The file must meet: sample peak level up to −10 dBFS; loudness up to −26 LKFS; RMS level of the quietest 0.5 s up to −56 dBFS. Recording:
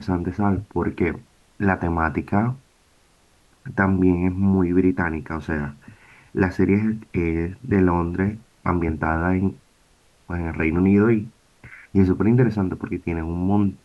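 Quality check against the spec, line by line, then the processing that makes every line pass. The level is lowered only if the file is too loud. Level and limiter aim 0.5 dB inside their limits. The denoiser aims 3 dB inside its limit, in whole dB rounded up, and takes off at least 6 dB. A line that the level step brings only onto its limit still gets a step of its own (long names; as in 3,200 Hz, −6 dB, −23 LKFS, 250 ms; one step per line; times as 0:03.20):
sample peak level −5.5 dBFS: out of spec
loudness −22.0 LKFS: out of spec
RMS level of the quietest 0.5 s −58 dBFS: in spec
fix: level −4.5 dB
brickwall limiter −10.5 dBFS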